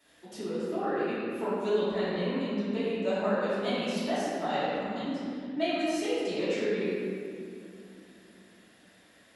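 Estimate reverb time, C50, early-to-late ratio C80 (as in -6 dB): 2.5 s, -4.0 dB, -2.0 dB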